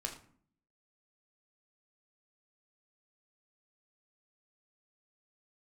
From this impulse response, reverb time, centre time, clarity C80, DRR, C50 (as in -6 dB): 0.55 s, 17 ms, 12.5 dB, 2.0 dB, 9.5 dB